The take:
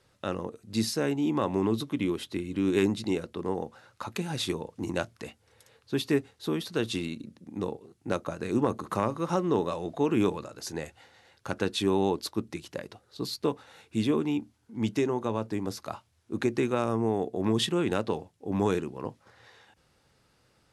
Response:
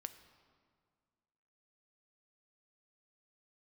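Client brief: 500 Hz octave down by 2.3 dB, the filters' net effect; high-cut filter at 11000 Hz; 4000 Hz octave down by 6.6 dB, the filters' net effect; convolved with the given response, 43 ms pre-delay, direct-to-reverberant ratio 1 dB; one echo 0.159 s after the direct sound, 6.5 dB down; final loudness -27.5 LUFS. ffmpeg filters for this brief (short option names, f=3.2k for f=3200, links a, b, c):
-filter_complex "[0:a]lowpass=11k,equalizer=f=500:t=o:g=-3,equalizer=f=4k:t=o:g=-8,aecho=1:1:159:0.473,asplit=2[a][b];[1:a]atrim=start_sample=2205,adelay=43[c];[b][c]afir=irnorm=-1:irlink=0,volume=3dB[d];[a][d]amix=inputs=2:normalize=0,volume=1dB"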